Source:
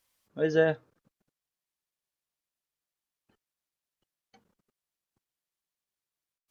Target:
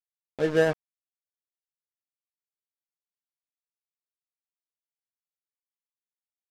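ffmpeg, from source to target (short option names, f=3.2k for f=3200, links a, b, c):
-af "aeval=exprs='val(0)*gte(abs(val(0)),0.0251)':c=same,adynamicsmooth=sensitivity=5.5:basefreq=840,volume=2dB"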